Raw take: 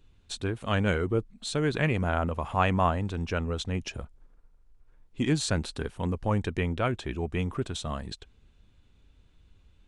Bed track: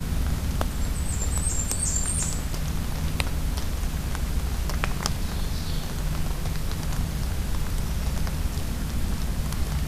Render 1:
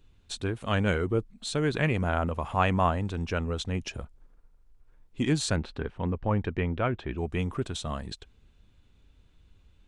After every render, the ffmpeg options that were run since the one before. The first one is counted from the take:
-filter_complex "[0:a]asettb=1/sr,asplit=3[a][b][c];[a]atrim=end=5.564[d];[b]atrim=start=5.56:end=7.18,asetpts=PTS-STARTPTS,afade=t=in:d=0.004:c=qsin,afade=t=out:st=1.616:d=0.004:c=qsin,lowpass=2.7k[e];[c]atrim=start=7.176[f];[d][e]acrossfade=d=0.004:c1=hsin:c2=qsin[g];[g][f]acrossfade=d=0.004:c1=qsin:c2=hsin"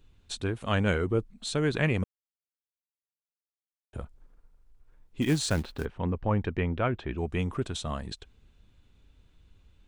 -filter_complex "[0:a]asplit=3[a][b][c];[a]afade=t=out:st=5.21:d=0.02[d];[b]acrusher=bits=5:mode=log:mix=0:aa=0.000001,afade=t=in:st=5.21:d=0.02,afade=t=out:st=5.84:d=0.02[e];[c]afade=t=in:st=5.84:d=0.02[f];[d][e][f]amix=inputs=3:normalize=0,asplit=3[g][h][i];[g]atrim=end=2.04,asetpts=PTS-STARTPTS,afade=t=out:st=2.036:d=0.004:c=hsin[j];[h]atrim=start=2.04:end=3.93,asetpts=PTS-STARTPTS,volume=0[k];[i]atrim=start=3.93,asetpts=PTS-STARTPTS,afade=t=in:d=0.004:c=hsin[l];[j][k][l]concat=n=3:v=0:a=1"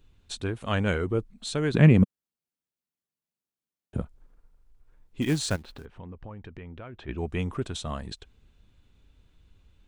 -filter_complex "[0:a]asettb=1/sr,asplit=3[a][b][c];[a]atrim=end=1.744[d];[b]atrim=start=1.74:end=4.02,asetpts=PTS-STARTPTS,afade=t=in:d=0.004:c=qsin,afade=t=out:st=2.276:d=0.004:c=qsin,equalizer=f=190:t=o:w=2.1:g=13.5[e];[c]atrim=start=4.016[f];[d][e]acrossfade=d=0.004:c1=hsin:c2=qsin[g];[g][f]acrossfade=d=0.004:c1=qsin:c2=hsin,asplit=3[h][i][j];[h]afade=t=out:st=5.55:d=0.02[k];[i]acompressor=threshold=-39dB:ratio=6:attack=3.2:release=140:knee=1:detection=peak,afade=t=in:st=5.55:d=0.02,afade=t=out:st=7.07:d=0.02[l];[j]afade=t=in:st=7.07:d=0.02[m];[k][l][m]amix=inputs=3:normalize=0"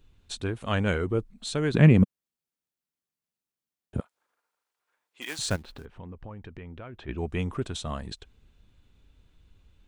-filter_complex "[0:a]asettb=1/sr,asplit=3[a][b][c];[a]atrim=end=4.004[d];[b]atrim=start=4:end=5.39,asetpts=PTS-STARTPTS,afade=t=in:d=0.004:c=qsin,afade=t=out:st=1.386:d=0.004:c=qsin,highpass=850[e];[c]atrim=start=5.386[f];[d][e]acrossfade=d=0.004:c1=hsin:c2=qsin[g];[g][f]acrossfade=d=0.004:c1=qsin:c2=hsin"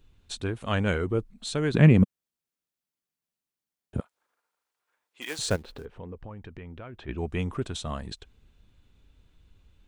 -filter_complex "[0:a]asettb=1/sr,asplit=3[a][b][c];[a]atrim=end=5.304[d];[b]atrim=start=5.3:end=6.19,asetpts=PTS-STARTPTS,afade=t=in:d=0.004:c=qsin,afade=t=out:st=0.886:d=0.004:c=qsin,equalizer=f=460:t=o:w=0.61:g=8[e];[c]atrim=start=6.186[f];[d][e]acrossfade=d=0.004:c1=hsin:c2=qsin[g];[g][f]acrossfade=d=0.004:c1=qsin:c2=hsin"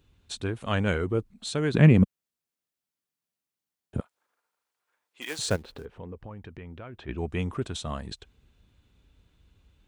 -af "highpass=41"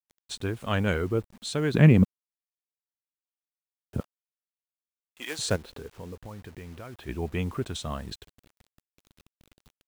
-af "acrusher=bits=8:mix=0:aa=0.000001"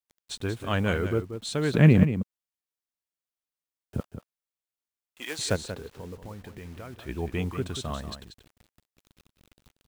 -af "aecho=1:1:185:0.316"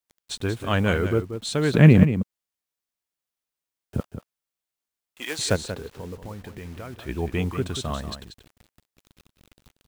-af "volume=4dB"

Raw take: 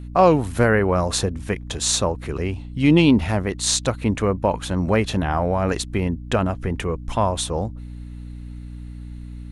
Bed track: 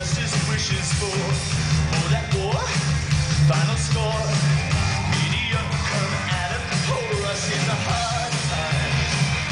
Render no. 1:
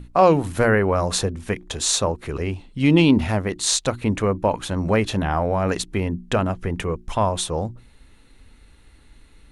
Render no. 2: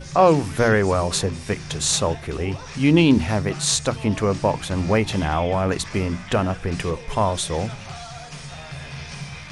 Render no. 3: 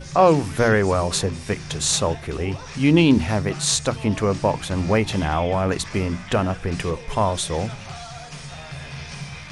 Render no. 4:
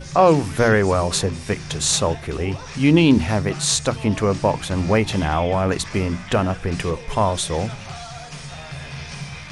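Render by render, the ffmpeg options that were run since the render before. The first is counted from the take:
-af "bandreject=f=60:t=h:w=6,bandreject=f=120:t=h:w=6,bandreject=f=180:t=h:w=6,bandreject=f=240:t=h:w=6,bandreject=f=300:t=h:w=6,bandreject=f=360:t=h:w=6"
-filter_complex "[1:a]volume=-13dB[a];[0:a][a]amix=inputs=2:normalize=0"
-af anull
-af "volume=1.5dB,alimiter=limit=-3dB:level=0:latency=1"

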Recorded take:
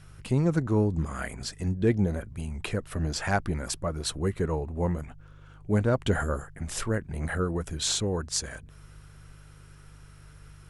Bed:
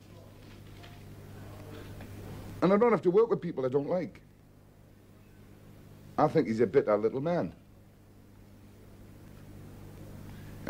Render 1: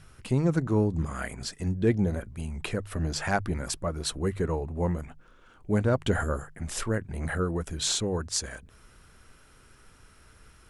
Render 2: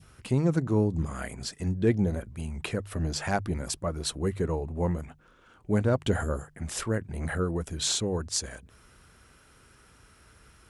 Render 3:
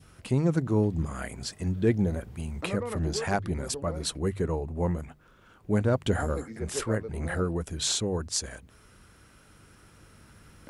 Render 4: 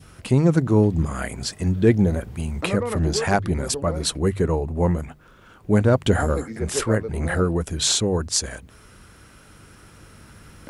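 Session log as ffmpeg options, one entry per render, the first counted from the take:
-af "bandreject=f=50:t=h:w=4,bandreject=f=100:t=h:w=4,bandreject=f=150:t=h:w=4"
-af "highpass=43,adynamicequalizer=threshold=0.00501:dfrequency=1500:dqfactor=1.1:tfrequency=1500:tqfactor=1.1:attack=5:release=100:ratio=0.375:range=3:mode=cutabove:tftype=bell"
-filter_complex "[1:a]volume=-11dB[a];[0:a][a]amix=inputs=2:normalize=0"
-af "volume=7.5dB"

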